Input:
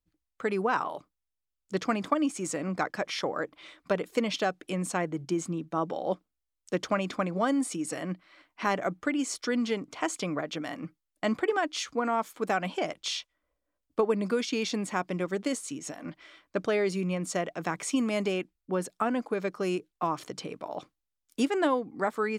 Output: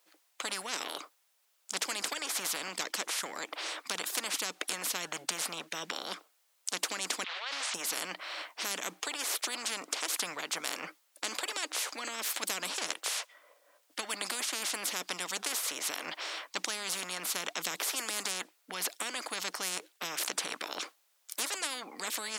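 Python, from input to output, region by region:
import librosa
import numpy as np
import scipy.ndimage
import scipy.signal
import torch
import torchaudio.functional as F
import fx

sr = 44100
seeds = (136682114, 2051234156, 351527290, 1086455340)

y = fx.chain(x, sr, fx.delta_hold(step_db=-40.0),
    fx.cheby1_bandpass(low_hz=1200.0, high_hz=3300.0, order=3),
    fx.sustainer(db_per_s=23.0), at=(7.24, 7.74))
y = scipy.signal.sosfilt(scipy.signal.butter(4, 500.0, 'highpass', fs=sr, output='sos'), y)
y = fx.spectral_comp(y, sr, ratio=10.0)
y = F.gain(torch.from_numpy(y), 3.0).numpy()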